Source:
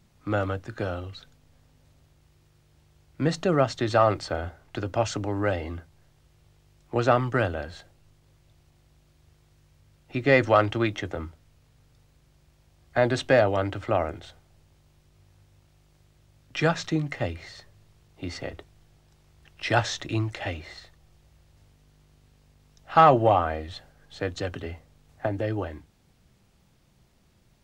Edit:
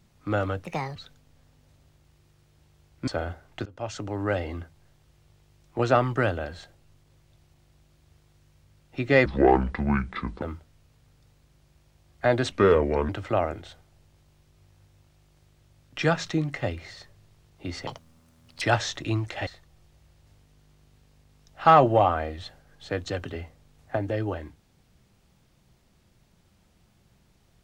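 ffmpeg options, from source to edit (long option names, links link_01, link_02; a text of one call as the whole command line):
ffmpeg -i in.wav -filter_complex "[0:a]asplit=12[link_01][link_02][link_03][link_04][link_05][link_06][link_07][link_08][link_09][link_10][link_11][link_12];[link_01]atrim=end=0.644[link_13];[link_02]atrim=start=0.64:end=1.12,asetpts=PTS-STARTPTS,asetrate=67032,aresample=44100,atrim=end_sample=13926,asetpts=PTS-STARTPTS[link_14];[link_03]atrim=start=1.116:end=3.242[link_15];[link_04]atrim=start=4.238:end=4.82,asetpts=PTS-STARTPTS,afade=type=out:start_time=0.578:duration=0.004:curve=hsin:silence=0.0707946[link_16];[link_05]atrim=start=4.82:end=10.424,asetpts=PTS-STARTPTS,afade=type=in:duration=0.91:curve=qsin:silence=0.0707946[link_17];[link_06]atrim=start=10.42:end=11.14,asetpts=PTS-STARTPTS,asetrate=27342,aresample=44100[link_18];[link_07]atrim=start=11.136:end=13.244[link_19];[link_08]atrim=start=13.24:end=13.67,asetpts=PTS-STARTPTS,asetrate=33075,aresample=44100[link_20];[link_09]atrim=start=13.666:end=18.454[link_21];[link_10]atrim=start=18.45:end=19.66,asetpts=PTS-STARTPTS,asetrate=71442,aresample=44100[link_22];[link_11]atrim=start=19.656:end=20.512[link_23];[link_12]atrim=start=20.768[link_24];[link_13][link_14]acrossfade=duration=0.004:curve1=hsin:curve2=hsin[link_25];[link_25][link_15]acrossfade=duration=0.004:curve1=hsin:curve2=hsin[link_26];[link_16][link_17]concat=n=2:v=0:a=1[link_27];[link_26][link_27]acrossfade=duration=0.004:curve1=hsin:curve2=hsin[link_28];[link_28][link_18]acrossfade=duration=0.004:curve1=hsin:curve2=hsin[link_29];[link_29][link_19]acrossfade=duration=0.004:curve1=hsin:curve2=hsin[link_30];[link_30][link_20]acrossfade=duration=0.004:curve1=hsin:curve2=hsin[link_31];[link_31][link_21]acrossfade=duration=0.004:curve1=hsin:curve2=hsin[link_32];[link_32][link_22]acrossfade=duration=0.004:curve1=hsin:curve2=hsin[link_33];[link_33][link_23]acrossfade=duration=0.004:curve1=hsin:curve2=hsin[link_34];[link_34][link_24]acrossfade=duration=0.004:curve1=hsin:curve2=hsin" out.wav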